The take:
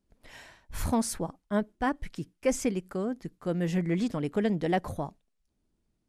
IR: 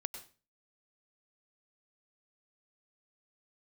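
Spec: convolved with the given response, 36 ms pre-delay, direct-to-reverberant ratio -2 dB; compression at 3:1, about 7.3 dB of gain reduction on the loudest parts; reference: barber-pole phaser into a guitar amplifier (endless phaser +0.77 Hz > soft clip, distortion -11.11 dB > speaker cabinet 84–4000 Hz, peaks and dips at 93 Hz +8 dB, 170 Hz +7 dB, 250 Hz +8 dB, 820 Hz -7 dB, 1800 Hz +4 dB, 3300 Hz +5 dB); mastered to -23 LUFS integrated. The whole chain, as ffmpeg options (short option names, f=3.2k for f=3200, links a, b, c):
-filter_complex "[0:a]acompressor=threshold=-32dB:ratio=3,asplit=2[a][b];[1:a]atrim=start_sample=2205,adelay=36[c];[b][c]afir=irnorm=-1:irlink=0,volume=3dB[d];[a][d]amix=inputs=2:normalize=0,asplit=2[e][f];[f]afreqshift=0.77[g];[e][g]amix=inputs=2:normalize=1,asoftclip=threshold=-33dB,highpass=84,equalizer=f=93:t=q:w=4:g=8,equalizer=f=170:t=q:w=4:g=7,equalizer=f=250:t=q:w=4:g=8,equalizer=f=820:t=q:w=4:g=-7,equalizer=f=1.8k:t=q:w=4:g=4,equalizer=f=3.3k:t=q:w=4:g=5,lowpass=f=4k:w=0.5412,lowpass=f=4k:w=1.3066,volume=13dB"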